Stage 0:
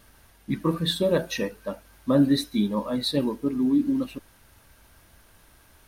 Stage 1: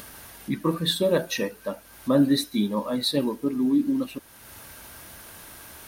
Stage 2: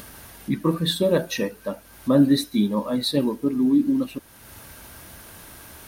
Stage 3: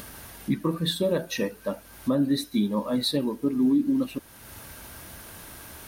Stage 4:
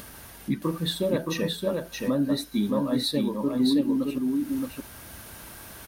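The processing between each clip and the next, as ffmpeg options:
ffmpeg -i in.wav -filter_complex "[0:a]highpass=frequency=150:poles=1,highshelf=frequency=8700:gain=6,asplit=2[link_01][link_02];[link_02]acompressor=mode=upward:threshold=-25dB:ratio=2.5,volume=-2dB[link_03];[link_01][link_03]amix=inputs=2:normalize=0,volume=-4dB" out.wav
ffmpeg -i in.wav -af "lowshelf=frequency=360:gain=5" out.wav
ffmpeg -i in.wav -af "alimiter=limit=-15dB:level=0:latency=1:release=401" out.wav
ffmpeg -i in.wav -af "aecho=1:1:621:0.668,volume=-1.5dB" out.wav

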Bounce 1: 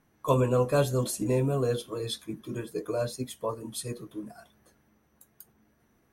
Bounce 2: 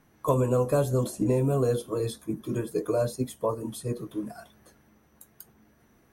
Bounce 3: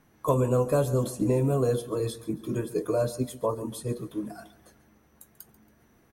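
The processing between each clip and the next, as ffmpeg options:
ffmpeg -i in.wav -filter_complex "[0:a]acrossover=split=1300|6100[link_01][link_02][link_03];[link_01]acompressor=threshold=-26dB:ratio=4[link_04];[link_02]acompressor=threshold=-57dB:ratio=4[link_05];[link_03]acompressor=threshold=-48dB:ratio=4[link_06];[link_04][link_05][link_06]amix=inputs=3:normalize=0,volume=5.5dB" out.wav
ffmpeg -i in.wav -af "aecho=1:1:139|278|417:0.141|0.0509|0.0183" out.wav

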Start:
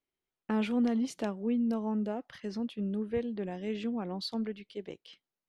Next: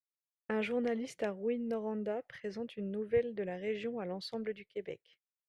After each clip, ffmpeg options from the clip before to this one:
ffmpeg -i in.wav -af "equalizer=frequency=125:width_type=o:width=1:gain=9,equalizer=frequency=250:width_type=o:width=1:gain=-8,equalizer=frequency=500:width_type=o:width=1:gain=11,equalizer=frequency=1000:width_type=o:width=1:gain=-5,equalizer=frequency=2000:width_type=o:width=1:gain=11,equalizer=frequency=4000:width_type=o:width=1:gain=-3,agate=range=-33dB:threshold=-41dB:ratio=3:detection=peak,volume=-5.5dB" out.wav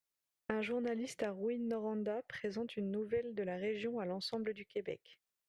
ffmpeg -i in.wav -af "acompressor=threshold=-43dB:ratio=3,volume=5.5dB" out.wav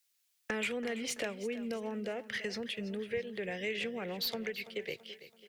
ffmpeg -i in.wav -filter_complex "[0:a]acrossover=split=290|480|1900[link_01][link_02][link_03][link_04];[link_04]aeval=exprs='0.0299*sin(PI/2*3.16*val(0)/0.0299)':channel_layout=same[link_05];[link_01][link_02][link_03][link_05]amix=inputs=4:normalize=0,aecho=1:1:332|664|996|1328:0.178|0.08|0.036|0.0162" out.wav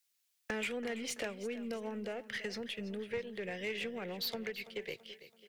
ffmpeg -i in.wav -af "aeval=exprs='0.075*(cos(1*acos(clip(val(0)/0.075,-1,1)))-cos(1*PI/2))+0.00668*(cos(2*acos(clip(val(0)/0.075,-1,1)))-cos(2*PI/2))+0.00596*(cos(6*acos(clip(val(0)/0.075,-1,1)))-cos(6*PI/2))+0.00596*(cos(8*acos(clip(val(0)/0.075,-1,1)))-cos(8*PI/2))':channel_layout=same,volume=-2.5dB" out.wav

